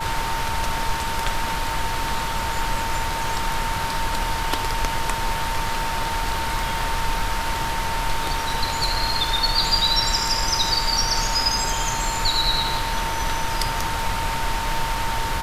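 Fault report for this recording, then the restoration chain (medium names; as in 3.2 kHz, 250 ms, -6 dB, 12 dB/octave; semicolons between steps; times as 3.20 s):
crackle 21 per s -31 dBFS
whine 910 Hz -27 dBFS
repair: de-click; band-stop 910 Hz, Q 30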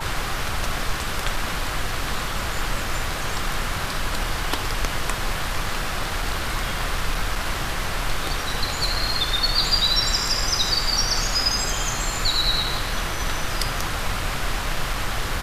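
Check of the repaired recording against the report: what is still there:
nothing left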